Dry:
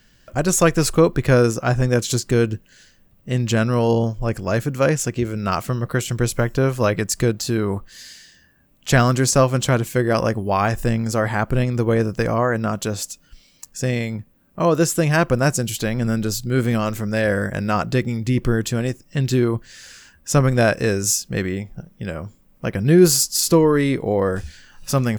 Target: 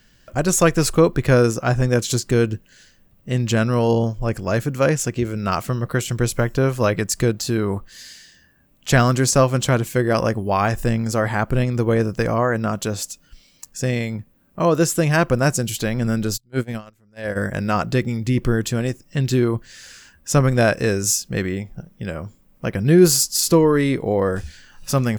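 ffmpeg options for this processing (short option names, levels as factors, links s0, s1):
-filter_complex "[0:a]asplit=3[s0][s1][s2];[s0]afade=t=out:st=16.36:d=0.02[s3];[s1]agate=range=0.0251:threshold=0.158:ratio=16:detection=peak,afade=t=in:st=16.36:d=0.02,afade=t=out:st=17.35:d=0.02[s4];[s2]afade=t=in:st=17.35:d=0.02[s5];[s3][s4][s5]amix=inputs=3:normalize=0"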